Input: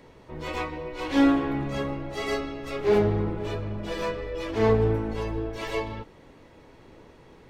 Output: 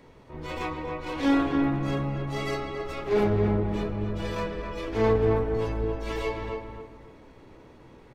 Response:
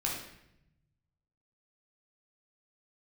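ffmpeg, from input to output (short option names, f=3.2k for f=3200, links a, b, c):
-filter_complex "[0:a]atempo=0.92,asplit=2[a][b];[b]adelay=272,lowpass=f=1.8k:p=1,volume=-4dB,asplit=2[c][d];[d]adelay=272,lowpass=f=1.8k:p=1,volume=0.33,asplit=2[e][f];[f]adelay=272,lowpass=f=1.8k:p=1,volume=0.33,asplit=2[g][h];[h]adelay=272,lowpass=f=1.8k:p=1,volume=0.33[i];[a][c][e][g][i]amix=inputs=5:normalize=0,asplit=2[j][k];[1:a]atrim=start_sample=2205,lowpass=3k[l];[k][l]afir=irnorm=-1:irlink=0,volume=-16dB[m];[j][m]amix=inputs=2:normalize=0,volume=-2.5dB"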